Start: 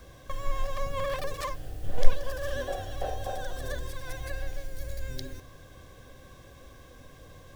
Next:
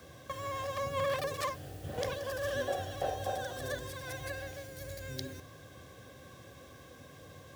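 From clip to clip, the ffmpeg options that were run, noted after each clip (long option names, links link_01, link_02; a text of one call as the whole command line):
ffmpeg -i in.wav -af "highpass=frequency=84:width=0.5412,highpass=frequency=84:width=1.3066,bandreject=frequency=1000:width=27" out.wav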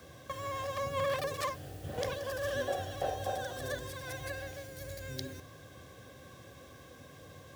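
ffmpeg -i in.wav -af anull out.wav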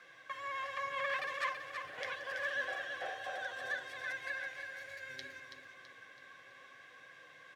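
ffmpeg -i in.wav -af "flanger=delay=5.7:depth=2.1:regen=-45:speed=0.69:shape=triangular,bandpass=frequency=1900:width_type=q:width=2.1:csg=0,aecho=1:1:329|658|987|1316|1645:0.447|0.192|0.0826|0.0355|0.0153,volume=9.5dB" out.wav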